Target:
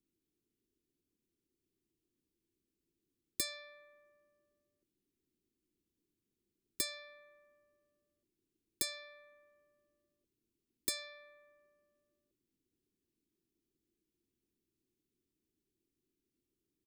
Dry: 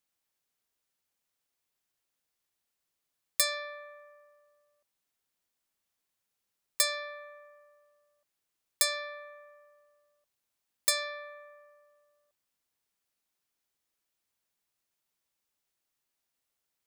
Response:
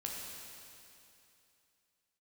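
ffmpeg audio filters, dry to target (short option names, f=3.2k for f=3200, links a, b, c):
-filter_complex "[0:a]firequalizer=gain_entry='entry(160,0);entry(350,11);entry(640,-25);entry(2500,-13)':delay=0.05:min_phase=1,acrossover=split=350|750|4500[a][b][c][d];[a]acontrast=36[e];[e][b][c][d]amix=inputs=4:normalize=0,volume=3.5dB"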